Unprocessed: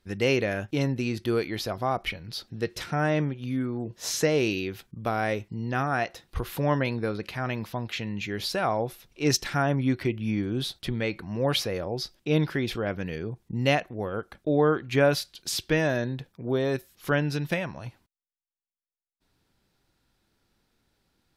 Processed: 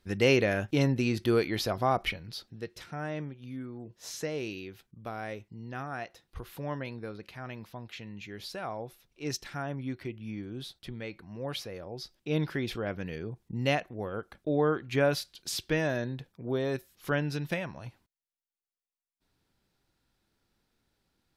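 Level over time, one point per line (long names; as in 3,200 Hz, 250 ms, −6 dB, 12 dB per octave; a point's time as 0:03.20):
0:02.02 +0.5 dB
0:02.71 −11 dB
0:11.80 −11 dB
0:12.49 −4.5 dB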